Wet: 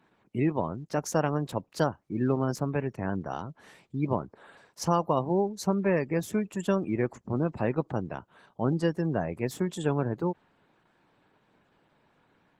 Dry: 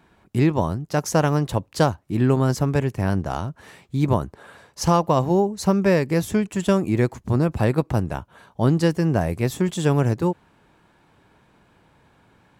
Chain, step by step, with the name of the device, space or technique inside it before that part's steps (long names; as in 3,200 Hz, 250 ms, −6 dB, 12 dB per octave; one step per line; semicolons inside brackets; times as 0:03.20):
0:08.72–0:09.13: noise gate −30 dBFS, range −51 dB
noise-suppressed video call (high-pass filter 150 Hz 12 dB per octave; gate on every frequency bin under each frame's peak −30 dB strong; level −6.5 dB; Opus 16 kbit/s 48,000 Hz)